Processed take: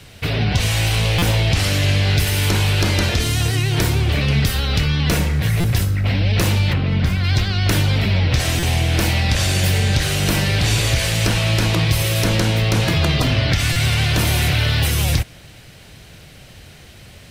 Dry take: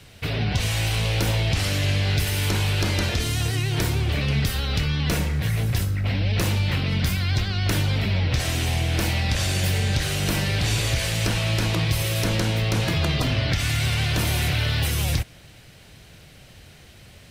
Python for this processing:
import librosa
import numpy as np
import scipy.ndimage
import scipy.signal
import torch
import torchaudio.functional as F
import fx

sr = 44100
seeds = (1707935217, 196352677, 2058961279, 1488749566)

y = fx.lowpass(x, sr, hz=fx.line((6.72, 1200.0), (7.23, 2400.0)), slope=6, at=(6.72, 7.23), fade=0.02)
y = fx.buffer_glitch(y, sr, at_s=(1.18, 5.6, 8.59, 13.72), block=256, repeats=6)
y = y * librosa.db_to_amplitude(5.5)